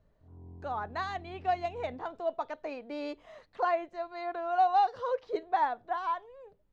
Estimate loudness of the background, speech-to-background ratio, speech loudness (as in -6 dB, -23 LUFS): -51.5 LUFS, 19.0 dB, -32.5 LUFS